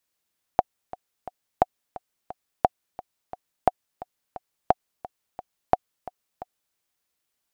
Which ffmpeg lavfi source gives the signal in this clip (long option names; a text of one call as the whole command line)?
ffmpeg -f lavfi -i "aevalsrc='pow(10,(-3-18.5*gte(mod(t,3*60/175),60/175))/20)*sin(2*PI*736*mod(t,60/175))*exp(-6.91*mod(t,60/175)/0.03)':duration=6.17:sample_rate=44100" out.wav